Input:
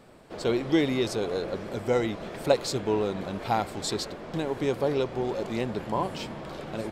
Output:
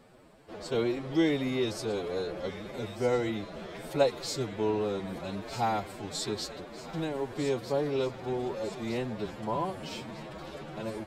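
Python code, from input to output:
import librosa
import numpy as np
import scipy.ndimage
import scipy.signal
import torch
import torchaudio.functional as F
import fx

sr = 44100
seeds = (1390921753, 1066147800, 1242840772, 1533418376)

y = fx.echo_wet_highpass(x, sr, ms=782, feedback_pct=55, hz=1600.0, wet_db=-11)
y = fx.stretch_vocoder(y, sr, factor=1.6)
y = y * 10.0 ** (-3.5 / 20.0)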